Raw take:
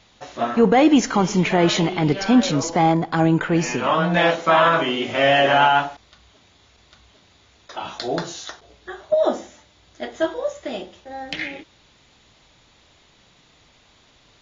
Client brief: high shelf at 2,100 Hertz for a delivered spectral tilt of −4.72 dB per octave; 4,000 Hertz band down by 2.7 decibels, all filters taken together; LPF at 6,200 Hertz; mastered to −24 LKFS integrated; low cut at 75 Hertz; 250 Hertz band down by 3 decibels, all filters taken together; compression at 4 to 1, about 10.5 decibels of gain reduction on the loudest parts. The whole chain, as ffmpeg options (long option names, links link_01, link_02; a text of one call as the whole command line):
ffmpeg -i in.wav -af "highpass=75,lowpass=6200,equalizer=frequency=250:width_type=o:gain=-4,highshelf=frequency=2100:gain=3,equalizer=frequency=4000:width_type=o:gain=-6.5,acompressor=threshold=-25dB:ratio=4,volume=5dB" out.wav